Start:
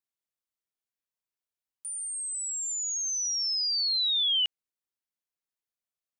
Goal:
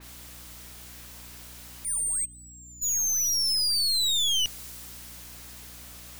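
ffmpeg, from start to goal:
-filter_complex "[0:a]aeval=exprs='val(0)+0.5*0.0119*sgn(val(0))':c=same,asplit=3[a][b][c];[a]afade=t=out:st=2.24:d=0.02[d];[b]agate=range=-33dB:threshold=-18dB:ratio=3:detection=peak,afade=t=in:st=2.24:d=0.02,afade=t=out:st=2.81:d=0.02[e];[c]afade=t=in:st=2.81:d=0.02[f];[d][e][f]amix=inputs=3:normalize=0,aeval=exprs='clip(val(0),-1,0.0168)':c=same,aeval=exprs='val(0)+0.00282*(sin(2*PI*60*n/s)+sin(2*PI*2*60*n/s)/2+sin(2*PI*3*60*n/s)/3+sin(2*PI*4*60*n/s)/4+sin(2*PI*5*60*n/s)/5)':c=same,adynamicequalizer=threshold=0.00562:dfrequency=4100:dqfactor=0.7:tfrequency=4100:tqfactor=0.7:attack=5:release=100:ratio=0.375:range=2.5:mode=boostabove:tftype=highshelf,volume=1.5dB"

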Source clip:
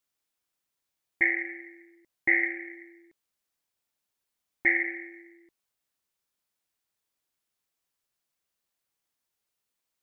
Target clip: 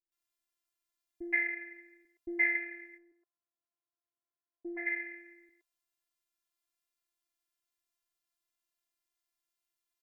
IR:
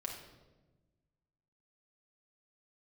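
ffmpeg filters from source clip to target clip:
-filter_complex "[0:a]asplit=3[a][b][c];[a]afade=t=out:st=2.85:d=0.02[d];[b]asuperpass=centerf=560:order=4:qfactor=0.64,afade=t=in:st=2.85:d=0.02,afade=t=out:st=4.73:d=0.02[e];[c]afade=t=in:st=4.73:d=0.02[f];[d][e][f]amix=inputs=3:normalize=0,afftfilt=real='hypot(re,im)*cos(PI*b)':imag='0':win_size=512:overlap=0.75,acrossover=split=470[g][h];[h]adelay=120[i];[g][i]amix=inputs=2:normalize=0,volume=-1.5dB"

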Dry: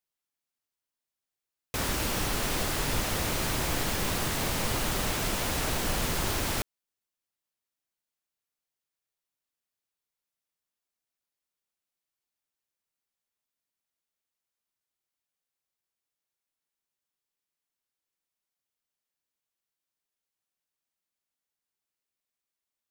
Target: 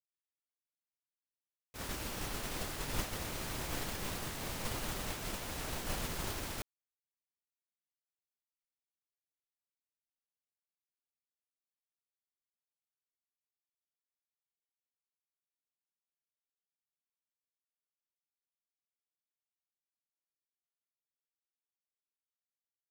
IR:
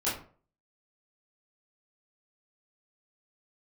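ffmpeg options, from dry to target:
-af "agate=range=-33dB:threshold=-16dB:ratio=3:detection=peak,volume=8.5dB"

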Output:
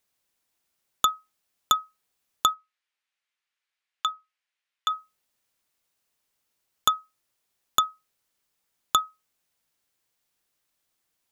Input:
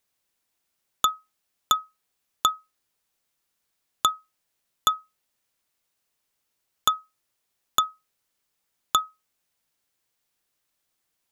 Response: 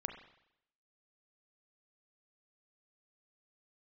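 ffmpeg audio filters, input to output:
-filter_complex "[0:a]asplit=3[a][b][c];[a]afade=t=out:st=2.53:d=0.02[d];[b]bandpass=f=2.2k:t=q:w=1.3:csg=0,afade=t=in:st=2.53:d=0.02,afade=t=out:st=4.89:d=0.02[e];[c]afade=t=in:st=4.89:d=0.02[f];[d][e][f]amix=inputs=3:normalize=0"

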